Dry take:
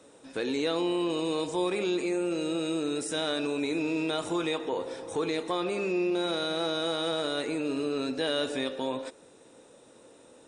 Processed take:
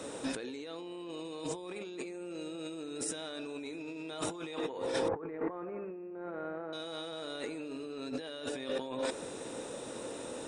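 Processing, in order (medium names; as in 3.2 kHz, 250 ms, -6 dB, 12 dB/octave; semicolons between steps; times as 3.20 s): 5.08–6.73 s: steep low-pass 1.9 kHz 36 dB/octave; compressor with a negative ratio -42 dBFS, ratio -1; trim +2 dB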